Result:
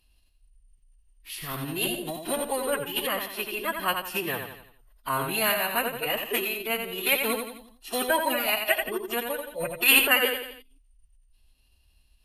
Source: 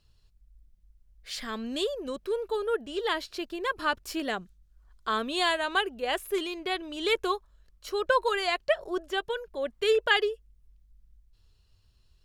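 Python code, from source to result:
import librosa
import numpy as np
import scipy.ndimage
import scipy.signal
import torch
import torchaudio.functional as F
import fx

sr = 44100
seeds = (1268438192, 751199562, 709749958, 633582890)

y = fx.echo_feedback(x, sr, ms=86, feedback_pct=45, wet_db=-6.0)
y = (np.kron(scipy.signal.resample_poly(y, 1, 3), np.eye(3)[0]) * 3)[:len(y)]
y = fx.dynamic_eq(y, sr, hz=5000.0, q=0.89, threshold_db=-41.0, ratio=4.0, max_db=-5)
y = fx.pitch_keep_formants(y, sr, semitones=-8.5)
y = fx.peak_eq(y, sr, hz=2700.0, db=10.0, octaves=0.49)
y = F.gain(torch.from_numpy(y), -4.0).numpy()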